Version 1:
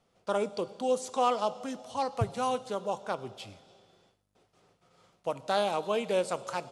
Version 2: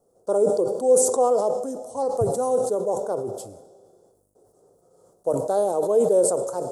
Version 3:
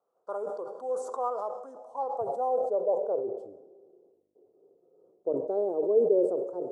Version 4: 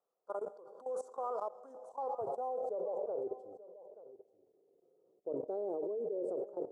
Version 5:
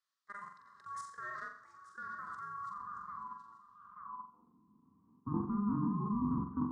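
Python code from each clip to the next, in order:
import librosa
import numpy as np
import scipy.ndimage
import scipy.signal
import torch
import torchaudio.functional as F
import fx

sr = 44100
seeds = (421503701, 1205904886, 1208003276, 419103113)

y1 = fx.curve_eq(x, sr, hz=(210.0, 450.0, 1500.0, 2400.0, 8300.0), db=(0, 13, -10, -29, 10))
y1 = fx.sustainer(y1, sr, db_per_s=56.0)
y2 = fx.high_shelf(y1, sr, hz=8600.0, db=-5.5)
y2 = fx.filter_sweep_bandpass(y2, sr, from_hz=1200.0, to_hz=370.0, start_s=1.63, end_s=3.64, q=2.7)
y3 = fx.level_steps(y2, sr, step_db=17)
y3 = y3 + 10.0 ** (-16.5 / 20.0) * np.pad(y3, (int(882 * sr / 1000.0), 0))[:len(y3)]
y3 = y3 * librosa.db_to_amplitude(-3.0)
y4 = y3 * np.sin(2.0 * np.pi * 610.0 * np.arange(len(y3)) / sr)
y4 = fx.room_flutter(y4, sr, wall_m=7.5, rt60_s=0.47)
y4 = fx.filter_sweep_bandpass(y4, sr, from_hz=4300.0, to_hz=280.0, start_s=3.71, end_s=4.58, q=1.8)
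y4 = y4 * librosa.db_to_amplitude(13.0)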